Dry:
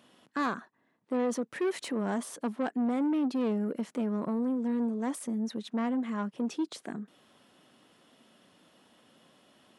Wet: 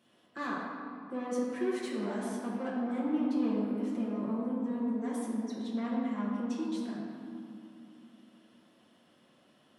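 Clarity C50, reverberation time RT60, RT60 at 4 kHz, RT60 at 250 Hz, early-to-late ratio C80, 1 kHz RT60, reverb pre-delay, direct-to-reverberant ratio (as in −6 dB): −0.5 dB, 2.5 s, 1.4 s, 3.5 s, 1.0 dB, 2.4 s, 5 ms, −7.0 dB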